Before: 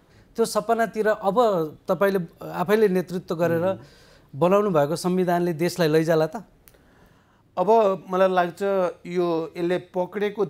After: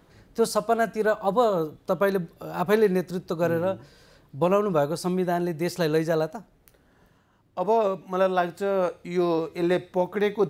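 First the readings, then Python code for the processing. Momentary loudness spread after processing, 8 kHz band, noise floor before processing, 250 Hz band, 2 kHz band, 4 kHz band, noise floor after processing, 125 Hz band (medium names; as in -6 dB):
8 LU, -2.0 dB, -58 dBFS, -2.0 dB, -2.0 dB, -2.0 dB, -62 dBFS, -2.5 dB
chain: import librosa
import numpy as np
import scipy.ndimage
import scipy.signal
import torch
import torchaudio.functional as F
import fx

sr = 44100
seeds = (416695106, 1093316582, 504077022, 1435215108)

y = fx.rider(x, sr, range_db=4, speed_s=2.0)
y = y * librosa.db_to_amplitude(-2.5)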